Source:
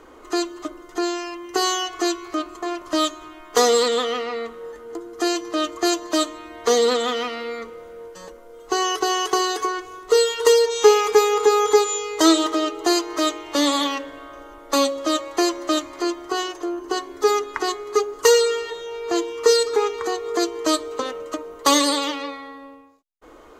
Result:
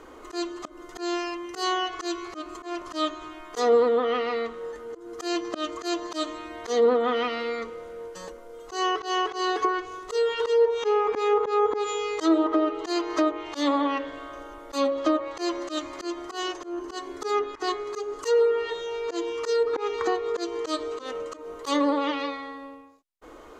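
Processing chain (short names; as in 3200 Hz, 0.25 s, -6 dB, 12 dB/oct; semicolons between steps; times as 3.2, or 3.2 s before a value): auto swell 0.168 s; treble ducked by the level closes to 1100 Hz, closed at -17 dBFS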